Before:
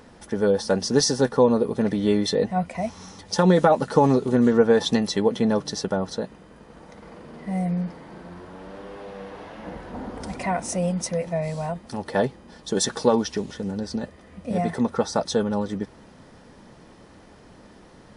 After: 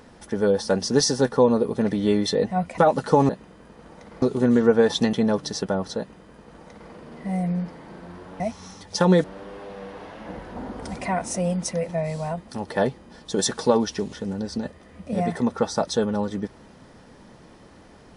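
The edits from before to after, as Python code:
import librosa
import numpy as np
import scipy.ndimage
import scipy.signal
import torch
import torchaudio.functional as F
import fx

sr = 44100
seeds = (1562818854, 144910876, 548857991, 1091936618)

y = fx.edit(x, sr, fx.move(start_s=2.78, length_s=0.84, to_s=8.62),
    fx.cut(start_s=5.04, length_s=0.31),
    fx.duplicate(start_s=6.2, length_s=0.93, to_s=4.13), tone=tone)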